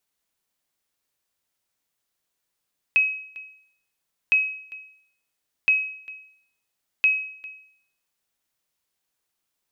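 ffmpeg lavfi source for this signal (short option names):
-f lavfi -i "aevalsrc='0.251*(sin(2*PI*2550*mod(t,1.36))*exp(-6.91*mod(t,1.36)/0.63)+0.0891*sin(2*PI*2550*max(mod(t,1.36)-0.4,0))*exp(-6.91*max(mod(t,1.36)-0.4,0)/0.63))':d=5.44:s=44100"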